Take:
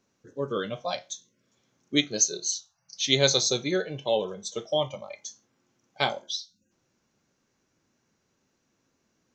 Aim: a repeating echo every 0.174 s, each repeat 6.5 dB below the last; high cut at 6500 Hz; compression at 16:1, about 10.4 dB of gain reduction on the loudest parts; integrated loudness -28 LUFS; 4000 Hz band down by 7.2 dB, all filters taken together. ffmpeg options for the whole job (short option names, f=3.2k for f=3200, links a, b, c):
-af "lowpass=6.5k,equalizer=f=4k:t=o:g=-8,acompressor=threshold=-28dB:ratio=16,aecho=1:1:174|348|522|696|870|1044:0.473|0.222|0.105|0.0491|0.0231|0.0109,volume=7dB"